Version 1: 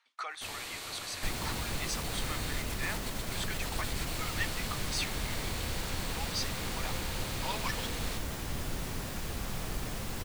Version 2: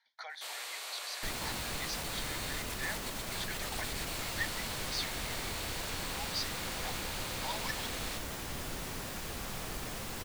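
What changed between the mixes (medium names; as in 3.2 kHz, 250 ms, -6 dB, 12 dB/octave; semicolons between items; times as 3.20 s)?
speech: add static phaser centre 1.8 kHz, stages 8; first sound: add high-pass 470 Hz 24 dB/octave; master: add bass shelf 230 Hz -7.5 dB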